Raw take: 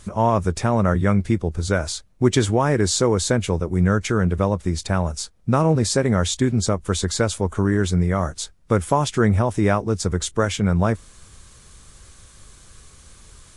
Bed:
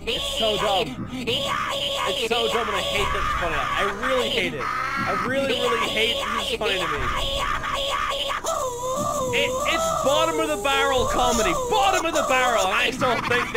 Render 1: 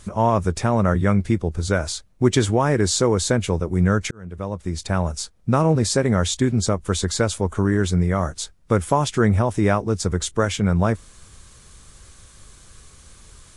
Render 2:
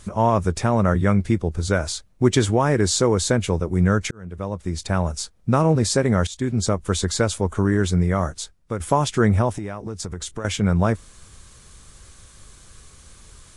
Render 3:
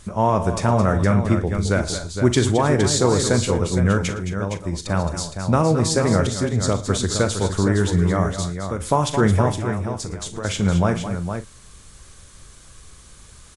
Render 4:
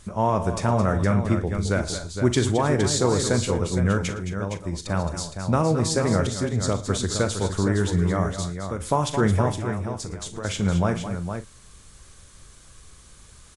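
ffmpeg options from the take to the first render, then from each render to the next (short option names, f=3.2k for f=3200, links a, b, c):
-filter_complex "[0:a]asplit=2[a][b];[a]atrim=end=4.11,asetpts=PTS-STARTPTS,afade=t=out:st=4.106:d=0.004:c=hsin[c];[b]atrim=start=4.11,asetpts=PTS-STARTPTS,afade=t=in:d=0.9[d];[c][d]concat=n=2:v=0:a=1"
-filter_complex "[0:a]asettb=1/sr,asplit=3[a][b][c];[a]atrim=end=9.514[d];[b]atrim=start=9.51:end=10.45,asetpts=PTS-STARTPTS,afade=t=in:d=0.004:c=qsin,afade=t=out:st=0.936:d=0.004:c=qsin,acompressor=threshold=-26dB:ratio=6:attack=3.2:release=140:knee=1:detection=peak[e];[c]atrim=start=10.446[f];[d][e]acrossfade=d=0.004:c1=hsin:c2=qsin[g];[g][f]acrossfade=d=0.004:c1=qsin:c2=hsin,asplit=3[h][i][j];[h]atrim=end=6.27,asetpts=PTS-STARTPTS,afade=t=out:st=6.266:d=0.004:c=hsin:silence=0.177828[k];[i]atrim=start=6.27:end=8.8,asetpts=PTS-STARTPTS,afade=t=in:d=0.53:c=qsin:silence=0.177828,afade=t=out:st=1.96:d=0.57:silence=0.298538[l];[j]atrim=start=8.8,asetpts=PTS-STARTPTS,afade=t=in:d=0.004:c=hsin:silence=0.298538[m];[k][l][m]concat=n=3:v=0:a=1"
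-filter_complex "[0:a]asplit=2[a][b];[b]adelay=41,volume=-13dB[c];[a][c]amix=inputs=2:normalize=0,aecho=1:1:58|112|213|220|464:0.15|0.106|0.15|0.266|0.398"
-af "volume=-3.5dB"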